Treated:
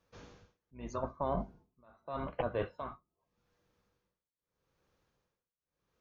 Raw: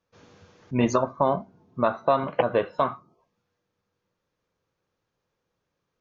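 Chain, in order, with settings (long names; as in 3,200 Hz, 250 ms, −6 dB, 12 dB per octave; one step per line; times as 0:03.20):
sub-octave generator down 2 octaves, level −3 dB
reversed playback
downward compressor 8 to 1, threshold −33 dBFS, peak gain reduction 17.5 dB
reversed playback
amplitude tremolo 0.81 Hz, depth 97%
level +2.5 dB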